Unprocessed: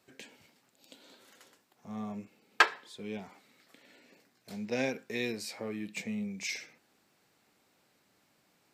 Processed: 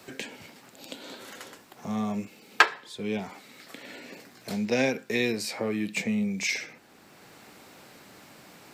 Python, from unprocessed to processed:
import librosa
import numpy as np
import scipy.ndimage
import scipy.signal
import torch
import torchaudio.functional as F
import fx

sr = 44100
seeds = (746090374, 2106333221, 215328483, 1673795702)

y = fx.band_squash(x, sr, depth_pct=40)
y = y * 10.0 ** (9.0 / 20.0)